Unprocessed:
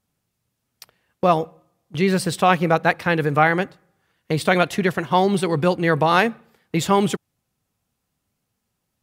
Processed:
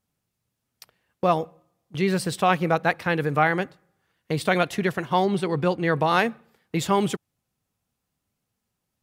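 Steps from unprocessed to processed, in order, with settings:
0:05.24–0:06.00: high-shelf EQ 5,600 Hz → 10,000 Hz −9.5 dB
level −4 dB

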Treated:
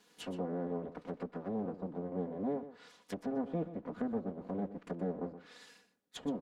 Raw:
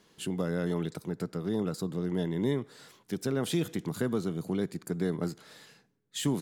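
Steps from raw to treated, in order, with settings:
lower of the sound and its delayed copy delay 4.1 ms
noise that follows the level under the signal 15 dB
high-pass filter 250 Hz 6 dB per octave
treble cut that deepens with the level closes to 640 Hz, closed at −34.5 dBFS
single-tap delay 122 ms −13 dB
level −1 dB

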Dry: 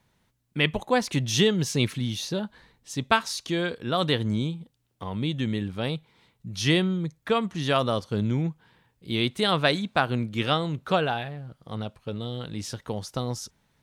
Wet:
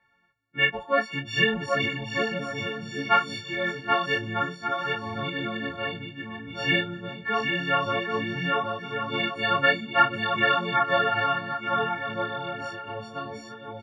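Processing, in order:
every partial snapped to a pitch grid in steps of 4 semitones
low-pass with resonance 1,800 Hz, resonance Q 2
low-shelf EQ 160 Hz −9.5 dB
bouncing-ball delay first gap 780 ms, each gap 0.6×, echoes 5
micro pitch shift up and down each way 20 cents

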